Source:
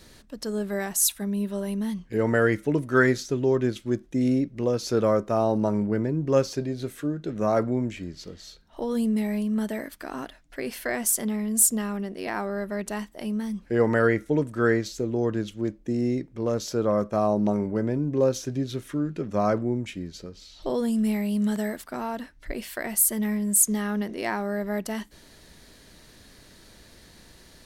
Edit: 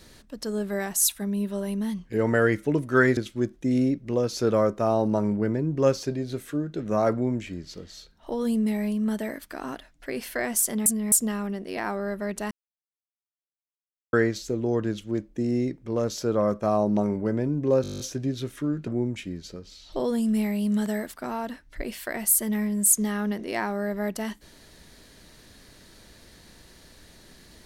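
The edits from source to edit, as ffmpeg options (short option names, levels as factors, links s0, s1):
-filter_complex "[0:a]asplit=16[s0][s1][s2][s3][s4][s5][s6][s7][s8][s9][s10][s11][s12][s13][s14][s15];[s0]atrim=end=3.172[s16];[s1]atrim=start=3.668:end=11.362[s17];[s2]atrim=start=11.358:end=11.622,asetpts=PTS-STARTPTS,areverse[s18];[s3]atrim=start=11.618:end=13.01,asetpts=PTS-STARTPTS,afade=t=out:st=1.388:d=0.004:c=hsin[s19];[s4]atrim=start=13.01:end=14.63,asetpts=PTS-STARTPTS,volume=0[s20];[s5]atrim=start=14.63:end=18.342,asetpts=PTS-STARTPTS,afade=t=in:d=0.004:c=hsin[s21];[s6]atrim=start=18.318:end=18.342[s22];[s7]atrim=start=18.318:end=18.342[s23];[s8]atrim=start=18.318:end=18.342[s24];[s9]atrim=start=18.318:end=18.342[s25];[s10]atrim=start=18.318:end=18.342[s26];[s11]atrim=start=18.318:end=18.342[s27];[s12]atrim=start=18.318:end=18.342[s28];[s13]atrim=start=18.318:end=18.342[s29];[s14]atrim=start=18.318:end=19.192[s30];[s15]atrim=start=19.568[s31];[s16][s17]acrossfade=d=0.004:c1=hsin:c2=hsin[s32];[s32][s18]acrossfade=d=0.004:c1=hsin:c2=hsin[s33];[s19][s20][s21]concat=n=3:v=0:a=1[s34];[s33][s34]acrossfade=d=0.004:c1=hsin:c2=hsin[s35];[s35][s22]acrossfade=d=0.004:c1=hsin:c2=hsin[s36];[s36][s23]acrossfade=d=0.004:c1=hsin:c2=hsin[s37];[s37][s24]acrossfade=d=0.004:c1=hsin:c2=hsin[s38];[s38][s25]acrossfade=d=0.004:c1=hsin:c2=hsin[s39];[s39][s26]acrossfade=d=0.004:c1=hsin:c2=hsin[s40];[s40][s27]acrossfade=d=0.004:c1=hsin:c2=hsin[s41];[s41][s28]acrossfade=d=0.004:c1=hsin:c2=hsin[s42];[s42][s29]acrossfade=d=0.004:c1=hsin:c2=hsin[s43];[s43][s30]acrossfade=d=0.004:c1=hsin:c2=hsin[s44];[s44][s31]acrossfade=d=0.004:c1=hsin:c2=hsin"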